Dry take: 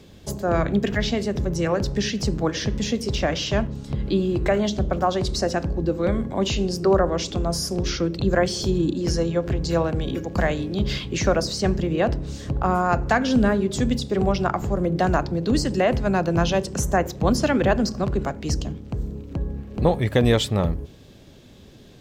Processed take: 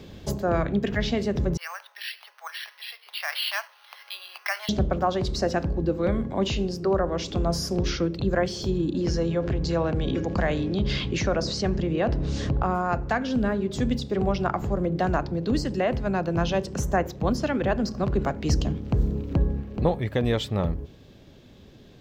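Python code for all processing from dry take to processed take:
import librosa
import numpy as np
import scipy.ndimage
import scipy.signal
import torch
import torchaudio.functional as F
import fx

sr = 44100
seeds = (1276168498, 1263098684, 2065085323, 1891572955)

y = fx.chain(x, sr, fx.bessel_highpass(hz=1500.0, order=8),
    fx.resample_bad(factor=6, down='filtered', up='hold'), at=(1.57, 4.69))
y = fx.chain(y, sr, fx.lowpass(hz=7900.0, slope=24),
    fx.env_flatten(amount_pct=50), at=(8.94, 12.64))
y = fx.peak_eq(y, sr, hz=9500.0, db=-9.5, octaves=1.1)
y = fx.rider(y, sr, range_db=10, speed_s=0.5)
y = F.gain(torch.from_numpy(y), -3.5).numpy()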